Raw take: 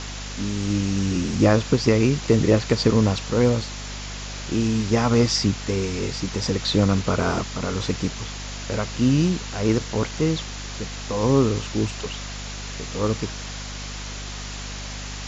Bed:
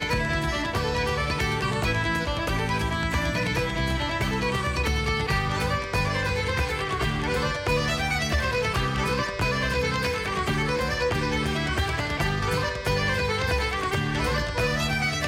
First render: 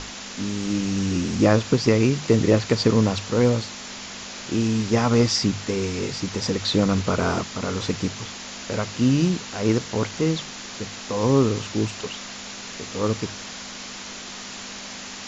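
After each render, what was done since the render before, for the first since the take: notches 50/100/150 Hz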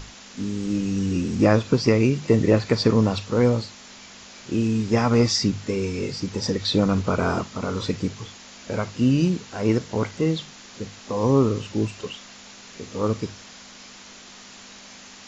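noise print and reduce 8 dB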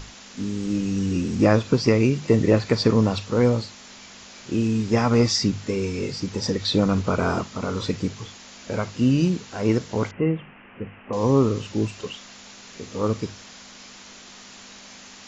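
10.11–11.13 steep low-pass 2900 Hz 96 dB/oct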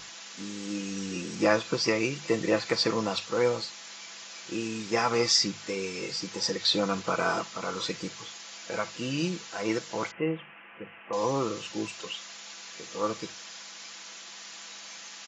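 HPF 940 Hz 6 dB/oct; comb 6 ms, depth 51%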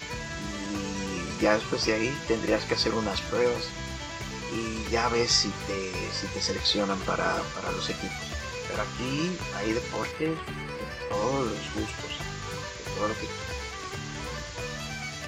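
add bed -11 dB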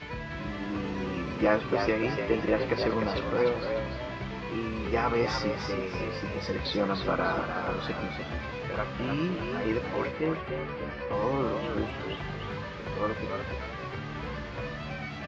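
air absorption 320 m; frequency-shifting echo 0.298 s, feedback 33%, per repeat +64 Hz, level -6 dB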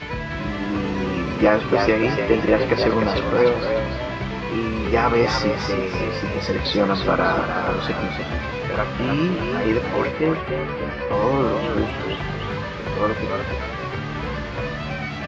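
gain +9 dB; limiter -3 dBFS, peak gain reduction 3 dB

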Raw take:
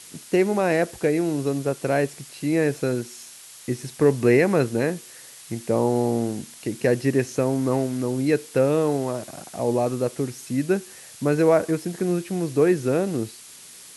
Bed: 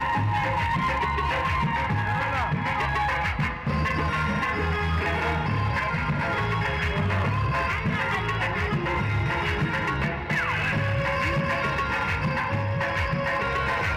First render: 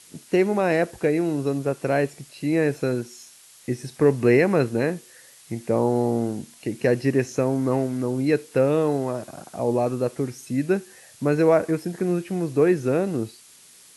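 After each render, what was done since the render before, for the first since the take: noise print and reduce 6 dB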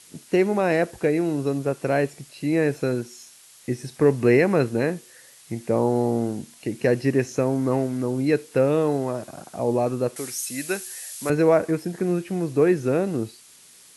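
10.16–11.3 tilt +4.5 dB/oct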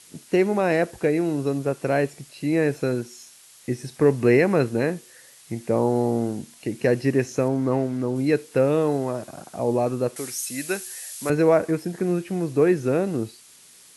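7.48–8.16 high shelf 7400 Hz -10 dB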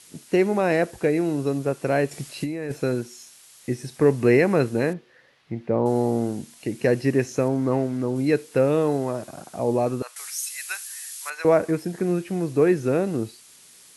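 2.11–2.72 negative-ratio compressor -28 dBFS; 4.93–5.86 air absorption 320 m; 10.02–11.45 HPF 970 Hz 24 dB/oct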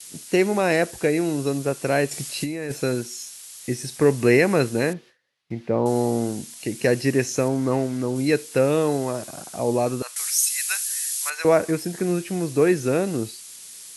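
gate with hold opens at -44 dBFS; bell 9000 Hz +10 dB 2.9 oct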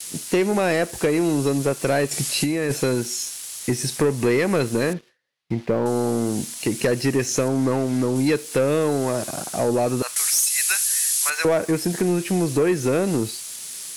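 compressor 3:1, threshold -24 dBFS, peak gain reduction 9.5 dB; sample leveller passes 2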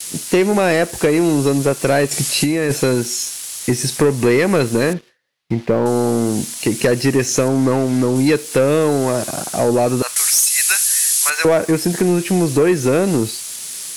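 gain +5.5 dB

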